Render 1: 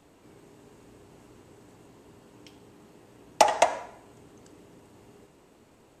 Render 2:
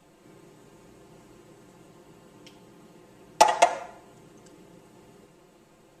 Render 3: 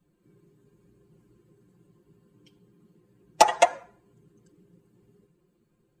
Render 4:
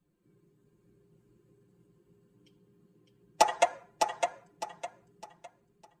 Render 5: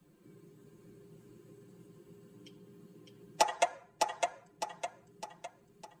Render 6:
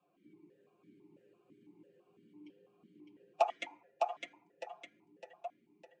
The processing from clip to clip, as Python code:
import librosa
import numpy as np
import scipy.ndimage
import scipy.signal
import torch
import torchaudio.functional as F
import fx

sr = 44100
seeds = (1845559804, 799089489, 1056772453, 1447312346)

y1 = x + 0.99 * np.pad(x, (int(5.7 * sr / 1000.0), 0))[:len(x)]
y1 = F.gain(torch.from_numpy(y1), -1.5).numpy()
y2 = fx.bin_expand(y1, sr, power=1.5)
y2 = F.gain(torch.from_numpy(y2), 1.5).numpy()
y3 = fx.echo_feedback(y2, sr, ms=607, feedback_pct=31, wet_db=-5.0)
y3 = F.gain(torch.from_numpy(y3), -6.0).numpy()
y4 = fx.band_squash(y3, sr, depth_pct=40)
y5 = fx.vowel_held(y4, sr, hz=6.0)
y5 = F.gain(torch.from_numpy(y5), 6.0).numpy()